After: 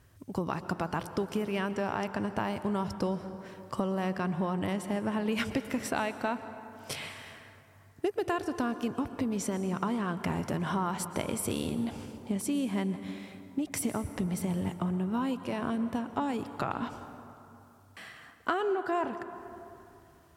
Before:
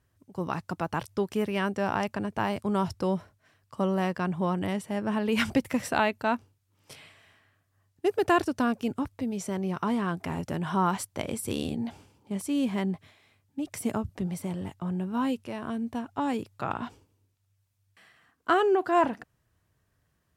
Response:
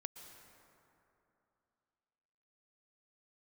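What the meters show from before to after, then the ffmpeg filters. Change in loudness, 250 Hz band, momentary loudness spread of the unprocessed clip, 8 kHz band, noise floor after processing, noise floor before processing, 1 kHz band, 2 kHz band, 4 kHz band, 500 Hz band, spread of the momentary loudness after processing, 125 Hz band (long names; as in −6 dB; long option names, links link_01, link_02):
−3.5 dB, −2.5 dB, 10 LU, +1.5 dB, −58 dBFS, −73 dBFS, −4.5 dB, −4.0 dB, −2.5 dB, −4.0 dB, 12 LU, −1.5 dB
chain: -filter_complex "[0:a]acompressor=threshold=-41dB:ratio=5,asplit=2[link_01][link_02];[1:a]atrim=start_sample=2205[link_03];[link_02][link_03]afir=irnorm=-1:irlink=0,volume=7dB[link_04];[link_01][link_04]amix=inputs=2:normalize=0,volume=3.5dB"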